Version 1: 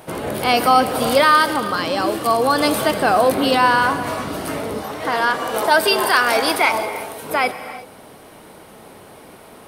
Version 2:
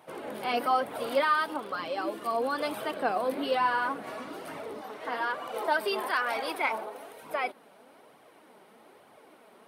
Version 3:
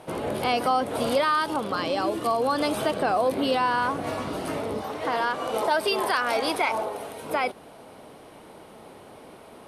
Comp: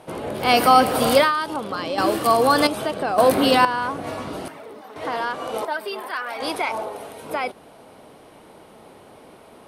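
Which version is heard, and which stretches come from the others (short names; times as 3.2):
3
0.44–1.25 from 1, crossfade 0.16 s
1.98–2.67 from 1
3.18–3.65 from 1
4.48–4.96 from 2
5.65–6.4 from 2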